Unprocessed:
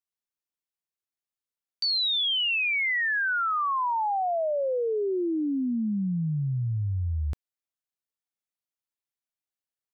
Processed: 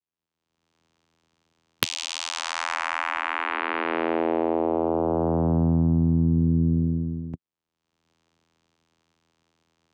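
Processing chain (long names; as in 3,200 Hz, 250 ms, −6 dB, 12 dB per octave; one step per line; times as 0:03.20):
camcorder AGC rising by 40 dB per second
channel vocoder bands 4, saw 82.6 Hz
sine wavefolder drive 8 dB, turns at 8.5 dBFS
level −10 dB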